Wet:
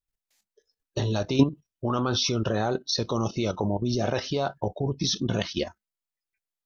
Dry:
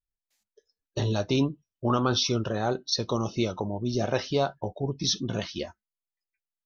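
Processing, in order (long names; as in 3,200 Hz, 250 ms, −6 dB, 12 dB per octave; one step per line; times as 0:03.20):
output level in coarse steps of 11 dB
level +7.5 dB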